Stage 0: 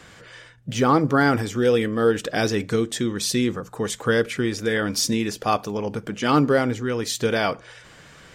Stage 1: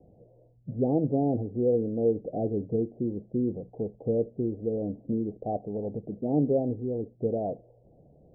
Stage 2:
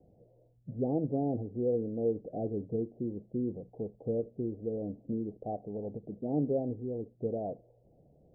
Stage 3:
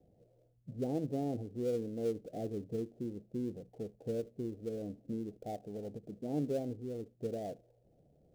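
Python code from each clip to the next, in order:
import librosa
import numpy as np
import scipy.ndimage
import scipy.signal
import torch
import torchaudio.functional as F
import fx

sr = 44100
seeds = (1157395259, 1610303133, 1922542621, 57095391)

y1 = scipy.signal.sosfilt(scipy.signal.butter(12, 740.0, 'lowpass', fs=sr, output='sos'), x)
y1 = F.gain(torch.from_numpy(y1), -5.5).numpy()
y2 = fx.end_taper(y1, sr, db_per_s=420.0)
y2 = F.gain(torch.from_numpy(y2), -5.5).numpy()
y3 = fx.dead_time(y2, sr, dead_ms=0.1)
y3 = F.gain(torch.from_numpy(y3), -4.5).numpy()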